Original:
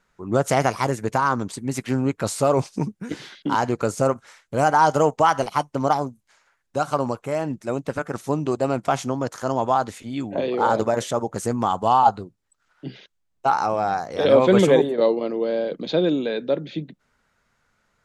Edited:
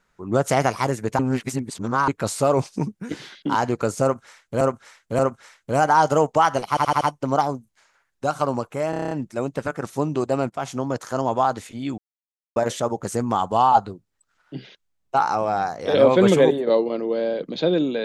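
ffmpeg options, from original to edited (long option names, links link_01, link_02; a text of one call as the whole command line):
ffmpeg -i in.wav -filter_complex "[0:a]asplit=19[link_01][link_02][link_03][link_04][link_05][link_06][link_07][link_08][link_09][link_10][link_11][link_12][link_13][link_14][link_15][link_16][link_17][link_18][link_19];[link_01]atrim=end=1.192[link_20];[link_02]atrim=start=1.188:end=2.082,asetpts=PTS-STARTPTS,areverse[link_21];[link_03]atrim=start=2.078:end=4.612[link_22];[link_04]atrim=start=4.028:end=4.612[link_23];[link_05]atrim=start=4.028:end=5.612[link_24];[link_06]atrim=start=5.528:end=5.612[link_25];[link_07]atrim=start=5.528:end=5.612[link_26];[link_08]atrim=start=5.528:end=5.612[link_27];[link_09]atrim=start=5.528:end=7.452[link_28];[link_10]atrim=start=7.418:end=7.452[link_29];[link_11]atrim=start=7.418:end=7.452[link_30];[link_12]atrim=start=7.418:end=7.452[link_31];[link_13]atrim=start=7.418:end=7.452[link_32];[link_14]atrim=start=7.418:end=7.452[link_33];[link_15]atrim=start=7.418:end=7.452[link_34];[link_16]atrim=start=7.418:end=8.81,asetpts=PTS-STARTPTS,afade=type=out:start_time=1.388:duration=0.004:curve=hsin:silence=0.223872[link_35];[link_17]atrim=start=8.81:end=10.29,asetpts=PTS-STARTPTS,afade=type=in:duration=0.35:silence=0.223872,afade=type=out:start_time=1.476:duration=0.004:curve=hsin[link_36];[link_18]atrim=start=10.29:end=10.87,asetpts=PTS-STARTPTS,volume=0[link_37];[link_19]atrim=start=10.87,asetpts=PTS-STARTPTS,afade=type=in:duration=0.004:curve=hsin[link_38];[link_20][link_21]acrossfade=duration=0.004:curve1=hsin:curve2=hsin[link_39];[link_39][link_22]acrossfade=duration=0.004:curve1=hsin:curve2=hsin[link_40];[link_40][link_23]acrossfade=duration=0.004:curve1=hsin:curve2=hsin[link_41];[link_41][link_24]acrossfade=duration=0.004:curve1=hsin:curve2=hsin[link_42];[link_42][link_25]acrossfade=duration=0.004:curve1=hsin:curve2=hsin[link_43];[link_43][link_26]acrossfade=duration=0.004:curve1=hsin:curve2=hsin[link_44];[link_44][link_27]acrossfade=duration=0.004:curve1=hsin:curve2=hsin[link_45];[link_45][link_28]acrossfade=duration=0.004:curve1=hsin:curve2=hsin[link_46];[link_46][link_29]acrossfade=duration=0.004:curve1=hsin:curve2=hsin[link_47];[link_47][link_30]acrossfade=duration=0.004:curve1=hsin:curve2=hsin[link_48];[link_48][link_31]acrossfade=duration=0.004:curve1=hsin:curve2=hsin[link_49];[link_49][link_32]acrossfade=duration=0.004:curve1=hsin:curve2=hsin[link_50];[link_50][link_33]acrossfade=duration=0.004:curve1=hsin:curve2=hsin[link_51];[link_51][link_34]acrossfade=duration=0.004:curve1=hsin:curve2=hsin[link_52];[link_35][link_36][link_37][link_38]concat=n=4:v=0:a=1[link_53];[link_52][link_53]acrossfade=duration=0.004:curve1=hsin:curve2=hsin" out.wav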